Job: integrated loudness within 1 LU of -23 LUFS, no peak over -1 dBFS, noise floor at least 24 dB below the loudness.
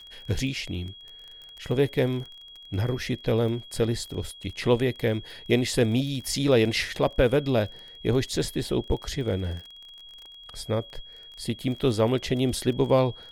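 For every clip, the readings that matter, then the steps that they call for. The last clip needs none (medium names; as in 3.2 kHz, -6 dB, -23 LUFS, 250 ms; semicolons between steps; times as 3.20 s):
tick rate 26 per s; steady tone 3.3 kHz; tone level -44 dBFS; loudness -26.5 LUFS; peak level -8.0 dBFS; loudness target -23.0 LUFS
-> de-click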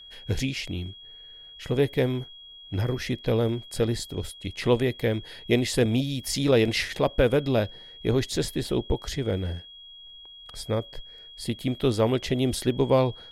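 tick rate 0.23 per s; steady tone 3.3 kHz; tone level -44 dBFS
-> band-stop 3.3 kHz, Q 30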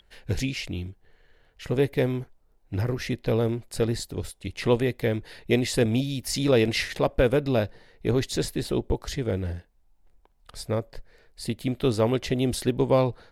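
steady tone not found; loudness -26.5 LUFS; peak level -8.5 dBFS; loudness target -23.0 LUFS
-> trim +3.5 dB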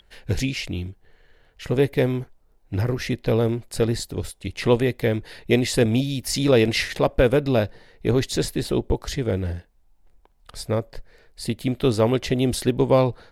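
loudness -23.0 LUFS; peak level -5.0 dBFS; noise floor -59 dBFS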